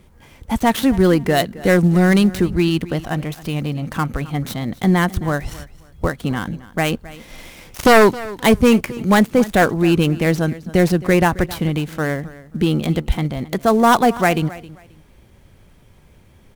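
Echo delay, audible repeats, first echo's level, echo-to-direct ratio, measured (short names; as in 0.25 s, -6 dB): 0.267 s, 2, -18.5 dB, -18.5 dB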